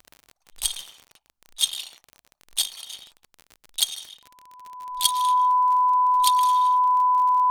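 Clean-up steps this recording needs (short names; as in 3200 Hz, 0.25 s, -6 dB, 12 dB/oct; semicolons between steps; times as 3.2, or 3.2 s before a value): clip repair -6.5 dBFS; de-click; notch 1000 Hz, Q 30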